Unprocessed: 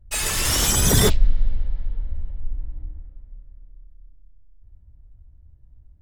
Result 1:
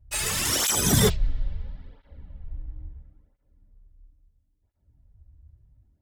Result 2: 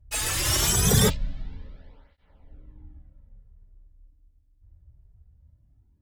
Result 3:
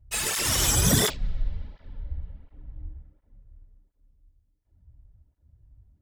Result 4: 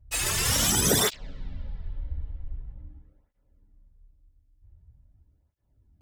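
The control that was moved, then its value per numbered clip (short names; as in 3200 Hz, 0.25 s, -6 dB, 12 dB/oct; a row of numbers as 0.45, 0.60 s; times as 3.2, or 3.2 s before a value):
tape flanging out of phase, nulls at: 0.74, 0.23, 1.4, 0.45 Hz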